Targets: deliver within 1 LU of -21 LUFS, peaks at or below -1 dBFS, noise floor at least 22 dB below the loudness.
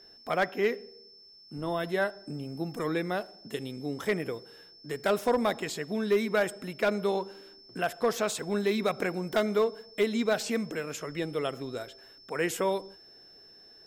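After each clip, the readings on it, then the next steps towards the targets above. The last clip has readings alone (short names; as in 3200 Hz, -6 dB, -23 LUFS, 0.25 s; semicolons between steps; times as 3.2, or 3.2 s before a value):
clipped 0.3%; flat tops at -18.0 dBFS; steady tone 5300 Hz; tone level -52 dBFS; loudness -30.5 LUFS; peak -18.0 dBFS; loudness target -21.0 LUFS
-> clip repair -18 dBFS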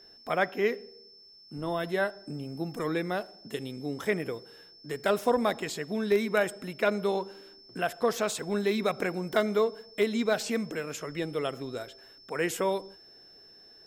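clipped 0.0%; steady tone 5300 Hz; tone level -52 dBFS
-> notch 5300 Hz, Q 30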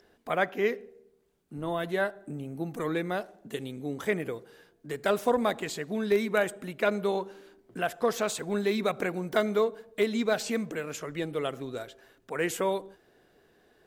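steady tone none; loudness -30.5 LUFS; peak -12.0 dBFS; loudness target -21.0 LUFS
-> gain +9.5 dB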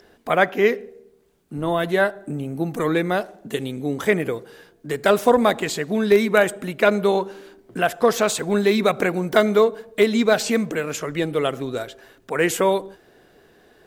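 loudness -21.0 LUFS; peak -2.5 dBFS; noise floor -56 dBFS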